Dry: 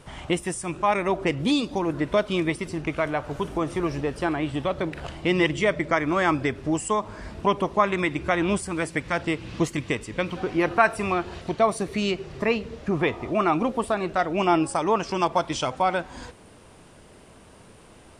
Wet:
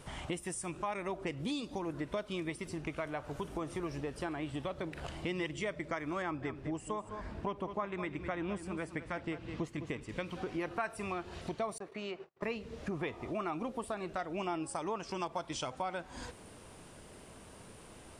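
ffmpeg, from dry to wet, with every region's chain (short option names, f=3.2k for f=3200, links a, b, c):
-filter_complex "[0:a]asettb=1/sr,asplit=3[a][b][c];[a]atrim=end=6.224[d];[b]atrim=start=6.22:end=10.09,asetpts=PTS-STARTPTS,afade=t=in:d=0.004:c=qsin,afade=t=out:st=3.866:d=0.004:c=qsin,lowpass=f=2.2k:p=1,aecho=1:1:206:0.237,atrim=end_sample=170667[e];[c]atrim=start=10.086[f];[d][e]acrossfade=d=0.004:c1=hsin:c2=qsin[g];[g][f]acrossfade=d=0.004:c1=qsin:c2=hsin,asettb=1/sr,asplit=3[h][i][j];[h]atrim=end=11.784[k];[i]atrim=start=11.78:end=12.43,asetpts=PTS-STARTPTS,afade=t=in:d=0.004:c=qsin,afade=t=out:st=0.646:d=0.004:c=qsin,bandpass=f=910:t=q:w=0.86,agate=range=-43dB:threshold=-44dB:ratio=16:release=100:detection=peak[l];[j]atrim=start=12.426[m];[k][l]acrossfade=d=0.004:c1=hsin:c2=qsin[n];[n][m]acrossfade=d=0.004:c1=qsin:c2=hsin,highshelf=f=8.4k:g=6.5,acompressor=threshold=-36dB:ratio=2.5,volume=-3.5dB"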